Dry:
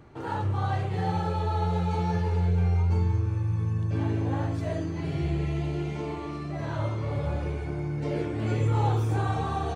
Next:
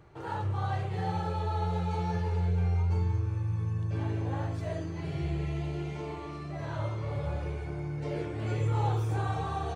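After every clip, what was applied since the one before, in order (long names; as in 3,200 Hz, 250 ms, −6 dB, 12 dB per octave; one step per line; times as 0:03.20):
parametric band 250 Hz −13 dB 0.34 octaves
level −3.5 dB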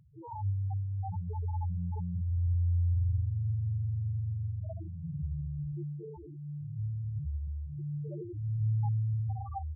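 spectral peaks only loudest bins 2
level +1 dB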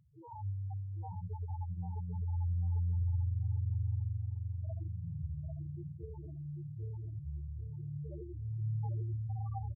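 repeating echo 794 ms, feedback 29%, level −5 dB
level −6.5 dB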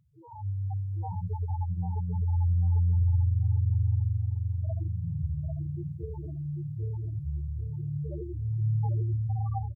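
automatic gain control gain up to 8.5 dB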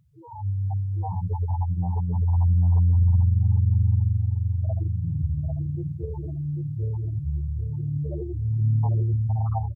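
highs frequency-modulated by the lows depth 0.42 ms
level +5.5 dB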